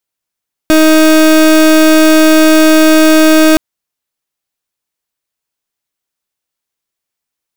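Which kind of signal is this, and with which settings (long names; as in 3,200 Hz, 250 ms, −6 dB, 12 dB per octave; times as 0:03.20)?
pulse wave 314 Hz, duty 31% −5.5 dBFS 2.87 s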